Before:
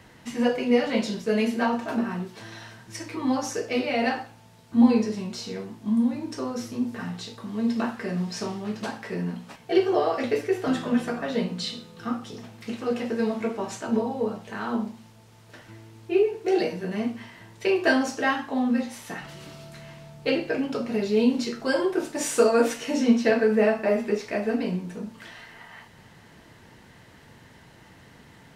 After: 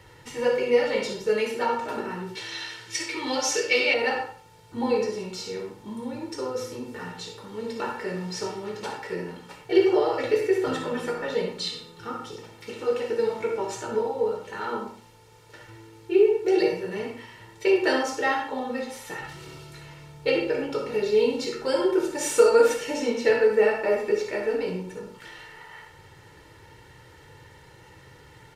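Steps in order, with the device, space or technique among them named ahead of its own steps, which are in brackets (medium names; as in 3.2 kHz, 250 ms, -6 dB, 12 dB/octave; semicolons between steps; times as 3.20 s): microphone above a desk (comb 2.2 ms, depth 77%; reverberation RT60 0.35 s, pre-delay 54 ms, DRR 4.5 dB); 2.35–3.94 s: frequency weighting D; trim -2 dB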